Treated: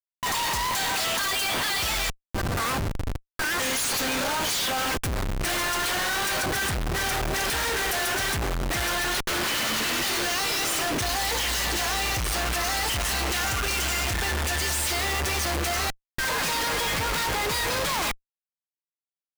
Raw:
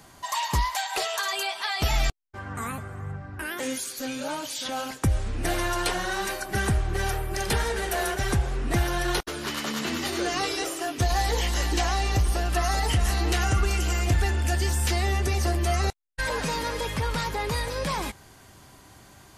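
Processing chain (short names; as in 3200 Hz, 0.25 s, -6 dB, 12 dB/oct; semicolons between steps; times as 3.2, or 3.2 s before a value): tilt shelf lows -8.5 dB, about 770 Hz; Schmitt trigger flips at -32.5 dBFS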